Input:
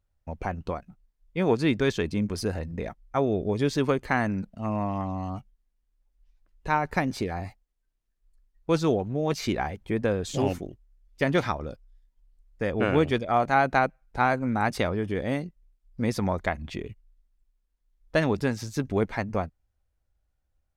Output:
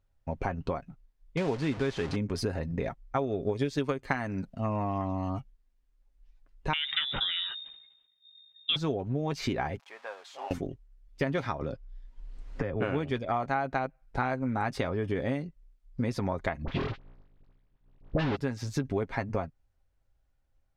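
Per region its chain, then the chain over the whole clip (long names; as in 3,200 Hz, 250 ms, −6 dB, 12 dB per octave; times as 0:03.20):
0:01.37–0:02.16: linear delta modulator 64 kbit/s, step −27 dBFS + high-frequency loss of the air 73 metres
0:03.17–0:04.54: high-shelf EQ 3,700 Hz +7 dB + transient designer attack +8 dB, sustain −2 dB
0:06.73–0:08.76: voice inversion scrambler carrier 3,700 Hz + level that may fall only so fast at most 61 dB per second
0:09.79–0:10.51: spike at every zero crossing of −22 dBFS + four-pole ladder band-pass 1,000 Hz, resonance 40% + spectral tilt +3.5 dB per octave
0:11.61–0:12.82: high-frequency loss of the air 65 metres + multiband upward and downward compressor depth 100%
0:16.64–0:18.36: each half-wave held at its own peak + low-pass filter 4,200 Hz 24 dB per octave + all-pass dispersion highs, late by 43 ms, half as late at 1,100 Hz
whole clip: high-shelf EQ 7,800 Hz −11.5 dB; comb filter 7.4 ms, depth 37%; downward compressor 6 to 1, threshold −29 dBFS; level +2.5 dB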